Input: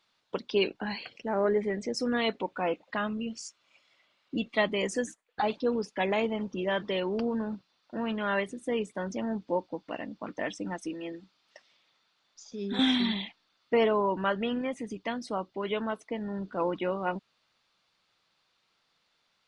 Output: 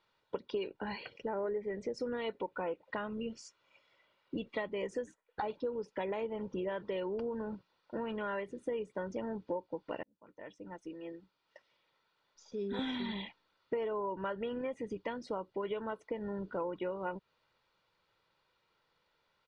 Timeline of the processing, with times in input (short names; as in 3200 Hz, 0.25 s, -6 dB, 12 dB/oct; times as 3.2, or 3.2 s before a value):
10.03–12.5 fade in
whole clip: LPF 1400 Hz 6 dB/oct; comb 2.1 ms, depth 45%; compressor, threshold -35 dBFS; gain +1 dB